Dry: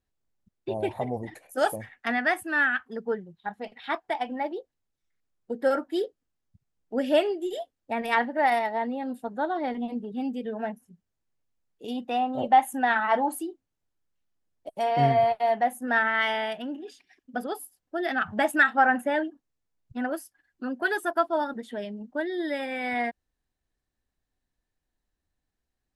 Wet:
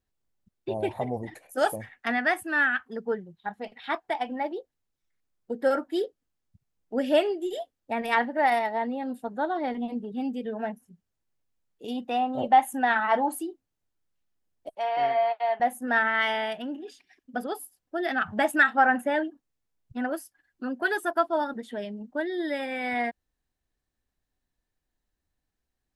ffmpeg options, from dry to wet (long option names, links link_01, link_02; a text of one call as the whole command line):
ffmpeg -i in.wav -filter_complex "[0:a]asettb=1/sr,asplit=3[link_01][link_02][link_03];[link_01]atrim=end=14.754[link_04];[link_02]atrim=start=14.75:end=15.6,asetpts=PTS-STARTPTS,afade=type=in:duration=0.004:curve=qsin,afade=type=out:start_time=0.846:duration=0.004:curve=qsin,highpass=650,lowpass=3700[link_05];[link_03]atrim=start=15.596[link_06];[link_04][link_05]acrossfade=duration=0.004:curve1=hsin:curve2=qsin[link_07];[link_07][link_06]acrossfade=duration=0.004:curve1=qsin:curve2=hsin" out.wav